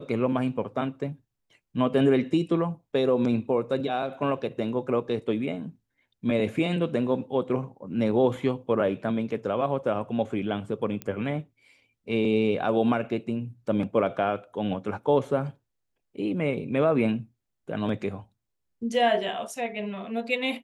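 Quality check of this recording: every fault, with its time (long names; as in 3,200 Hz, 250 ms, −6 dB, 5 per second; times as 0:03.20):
0:11.02: click −18 dBFS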